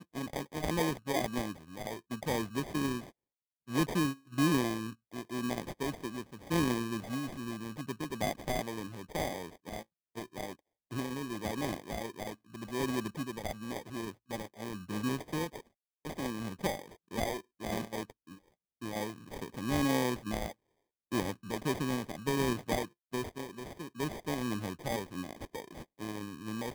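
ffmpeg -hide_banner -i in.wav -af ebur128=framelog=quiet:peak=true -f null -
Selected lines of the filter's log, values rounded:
Integrated loudness:
  I:         -36.4 LUFS
  Threshold: -46.6 LUFS
Loudness range:
  LRA:         5.5 LU
  Threshold: -56.6 LUFS
  LRA low:   -39.4 LUFS
  LRA high:  -34.0 LUFS
True peak:
  Peak:      -17.4 dBFS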